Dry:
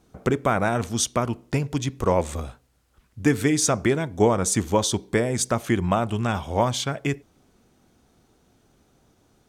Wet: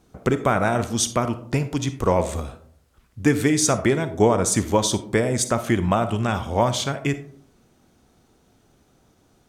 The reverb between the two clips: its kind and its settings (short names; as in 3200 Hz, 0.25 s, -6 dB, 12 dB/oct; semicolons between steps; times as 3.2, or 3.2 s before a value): digital reverb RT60 0.63 s, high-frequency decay 0.35×, pre-delay 10 ms, DRR 11 dB; gain +1.5 dB